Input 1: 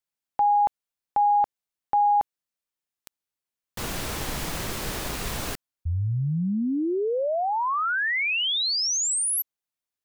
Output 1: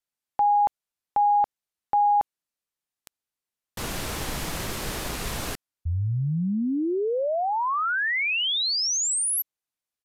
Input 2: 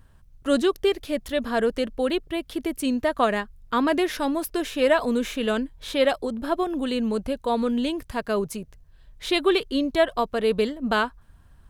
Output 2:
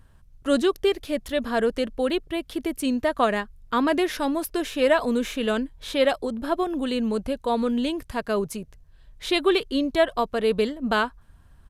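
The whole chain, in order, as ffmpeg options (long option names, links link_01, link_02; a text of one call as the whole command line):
ffmpeg -i in.wav -af "aresample=32000,aresample=44100" out.wav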